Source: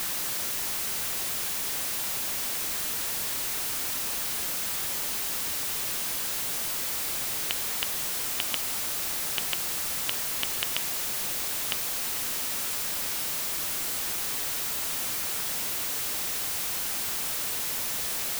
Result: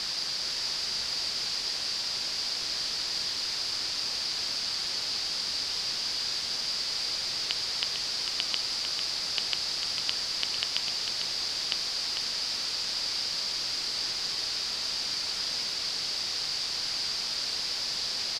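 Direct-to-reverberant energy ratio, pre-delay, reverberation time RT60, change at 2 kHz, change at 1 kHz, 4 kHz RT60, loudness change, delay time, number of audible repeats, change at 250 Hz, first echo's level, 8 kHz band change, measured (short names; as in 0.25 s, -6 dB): none, none, none, -2.5 dB, -4.0 dB, none, -1.0 dB, 0.449 s, 1, -5.0 dB, -7.0 dB, -6.5 dB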